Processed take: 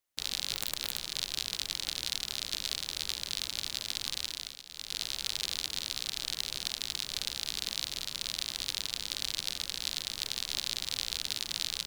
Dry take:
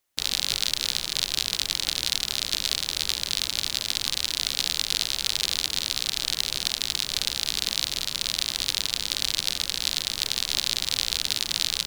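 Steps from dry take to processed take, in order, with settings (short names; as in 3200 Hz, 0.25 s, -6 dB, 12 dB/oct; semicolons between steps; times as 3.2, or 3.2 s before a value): 0.54–1.15 wrapped overs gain 6 dB; 4.22–5.07 dip -16 dB, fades 0.40 s; gain -8.5 dB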